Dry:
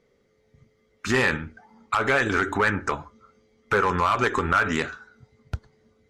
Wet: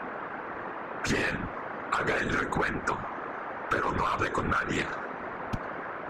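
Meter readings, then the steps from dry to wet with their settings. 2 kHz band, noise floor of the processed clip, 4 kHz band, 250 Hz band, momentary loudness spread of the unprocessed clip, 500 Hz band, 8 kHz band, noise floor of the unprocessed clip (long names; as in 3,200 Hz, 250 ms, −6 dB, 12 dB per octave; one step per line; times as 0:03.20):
−6.0 dB, −39 dBFS, −5.5 dB, −4.0 dB, 16 LU, −5.5 dB, −3.5 dB, −66 dBFS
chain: noise in a band 220–1,600 Hz −37 dBFS
random phases in short frames
downward compressor 12 to 1, threshold −24 dBFS, peak gain reduction 10.5 dB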